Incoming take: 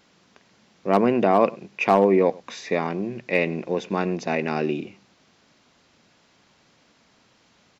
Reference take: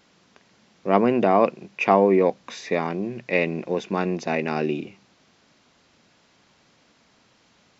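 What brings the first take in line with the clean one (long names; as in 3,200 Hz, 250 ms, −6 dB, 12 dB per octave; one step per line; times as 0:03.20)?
clipped peaks rebuilt −7 dBFS
echo removal 101 ms −23 dB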